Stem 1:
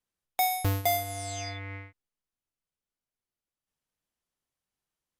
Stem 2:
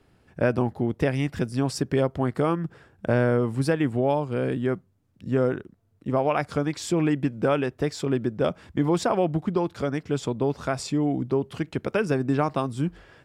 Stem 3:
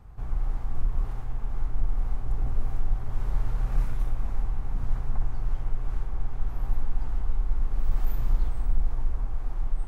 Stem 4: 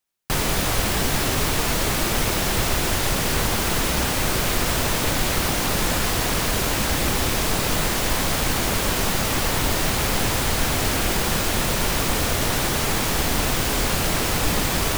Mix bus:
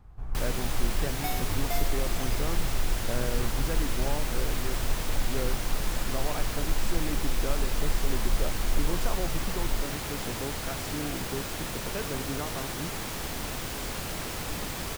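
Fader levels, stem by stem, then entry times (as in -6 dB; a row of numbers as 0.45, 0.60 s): -8.5, -12.5, -3.5, -12.5 dB; 0.85, 0.00, 0.00, 0.05 s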